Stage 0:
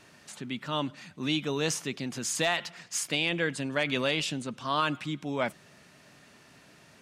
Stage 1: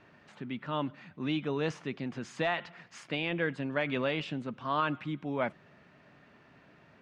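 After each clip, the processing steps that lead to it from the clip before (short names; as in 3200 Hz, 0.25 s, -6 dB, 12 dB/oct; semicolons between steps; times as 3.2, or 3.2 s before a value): LPF 2200 Hz 12 dB/oct; gain -1.5 dB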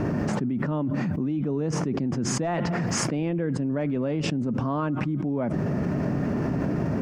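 EQ curve 280 Hz 0 dB, 3800 Hz -26 dB, 5300 Hz -12 dB; fast leveller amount 100%; gain +4.5 dB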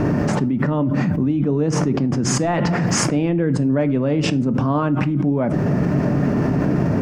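shoebox room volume 300 m³, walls furnished, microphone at 0.39 m; gain +7 dB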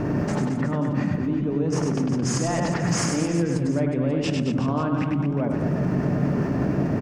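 reverse bouncing-ball echo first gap 0.1 s, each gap 1.2×, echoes 5; gain -7 dB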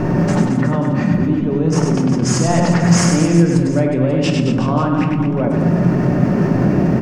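shoebox room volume 500 m³, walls furnished, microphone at 1 m; gain +7 dB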